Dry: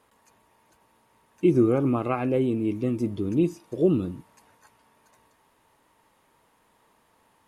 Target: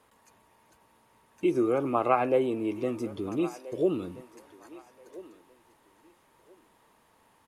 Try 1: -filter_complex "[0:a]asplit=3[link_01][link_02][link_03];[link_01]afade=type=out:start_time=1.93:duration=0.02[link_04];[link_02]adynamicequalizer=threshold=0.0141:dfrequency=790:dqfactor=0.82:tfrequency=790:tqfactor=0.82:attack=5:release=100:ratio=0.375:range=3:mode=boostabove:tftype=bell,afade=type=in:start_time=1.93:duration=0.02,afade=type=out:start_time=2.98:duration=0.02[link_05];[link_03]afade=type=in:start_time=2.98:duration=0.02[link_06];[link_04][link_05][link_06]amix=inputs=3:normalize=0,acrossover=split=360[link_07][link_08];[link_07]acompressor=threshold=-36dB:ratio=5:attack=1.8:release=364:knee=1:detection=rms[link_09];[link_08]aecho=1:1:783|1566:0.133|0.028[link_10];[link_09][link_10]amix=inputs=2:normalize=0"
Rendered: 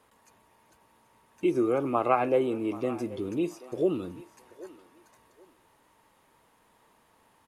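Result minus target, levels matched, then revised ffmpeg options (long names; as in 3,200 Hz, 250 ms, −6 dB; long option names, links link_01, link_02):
echo 548 ms early
-filter_complex "[0:a]asplit=3[link_01][link_02][link_03];[link_01]afade=type=out:start_time=1.93:duration=0.02[link_04];[link_02]adynamicequalizer=threshold=0.0141:dfrequency=790:dqfactor=0.82:tfrequency=790:tqfactor=0.82:attack=5:release=100:ratio=0.375:range=3:mode=boostabove:tftype=bell,afade=type=in:start_time=1.93:duration=0.02,afade=type=out:start_time=2.98:duration=0.02[link_05];[link_03]afade=type=in:start_time=2.98:duration=0.02[link_06];[link_04][link_05][link_06]amix=inputs=3:normalize=0,acrossover=split=360[link_07][link_08];[link_07]acompressor=threshold=-36dB:ratio=5:attack=1.8:release=364:knee=1:detection=rms[link_09];[link_08]aecho=1:1:1331|2662:0.133|0.028[link_10];[link_09][link_10]amix=inputs=2:normalize=0"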